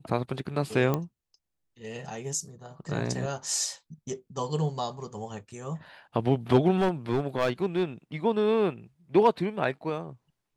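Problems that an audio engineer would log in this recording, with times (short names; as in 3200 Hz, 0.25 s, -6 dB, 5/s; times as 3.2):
0.94 pop -14 dBFS
6.76–7.83 clipped -20 dBFS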